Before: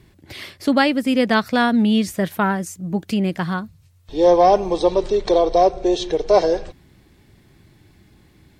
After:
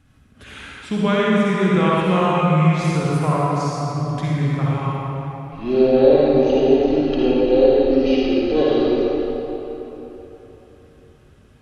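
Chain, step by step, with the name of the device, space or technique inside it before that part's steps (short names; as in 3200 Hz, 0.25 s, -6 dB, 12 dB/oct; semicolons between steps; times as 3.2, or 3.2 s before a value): slowed and reverbed (varispeed -26%; reverb RT60 3.7 s, pre-delay 47 ms, DRR -6.5 dB); gain -6.5 dB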